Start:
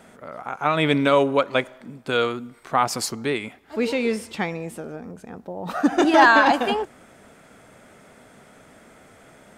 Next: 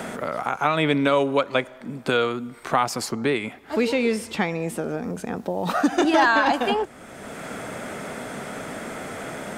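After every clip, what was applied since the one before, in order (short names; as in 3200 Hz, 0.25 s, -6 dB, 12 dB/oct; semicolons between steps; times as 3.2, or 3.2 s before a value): three-band squash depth 70%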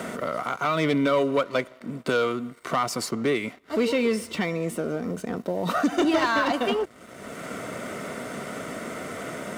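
sample leveller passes 2; notch comb 830 Hz; gain -7.5 dB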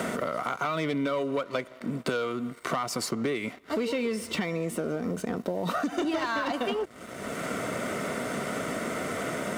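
compressor, threshold -30 dBFS, peak gain reduction 11.5 dB; gain +3.5 dB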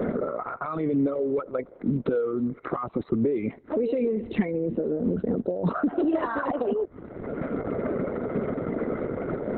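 formant sharpening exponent 2; RIAA curve playback; Opus 6 kbps 48000 Hz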